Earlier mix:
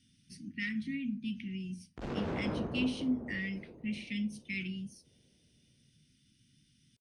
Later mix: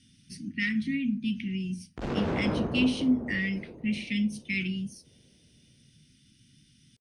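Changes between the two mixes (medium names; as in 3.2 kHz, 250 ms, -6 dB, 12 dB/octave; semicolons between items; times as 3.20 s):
speech +7.5 dB; background +6.5 dB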